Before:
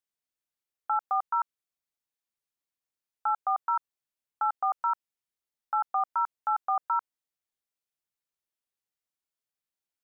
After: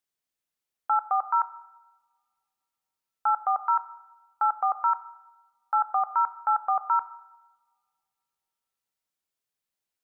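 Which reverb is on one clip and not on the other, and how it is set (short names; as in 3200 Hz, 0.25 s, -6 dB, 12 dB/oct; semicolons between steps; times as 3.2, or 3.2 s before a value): two-slope reverb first 0.95 s, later 2.6 s, from -27 dB, DRR 12.5 dB; gain +3 dB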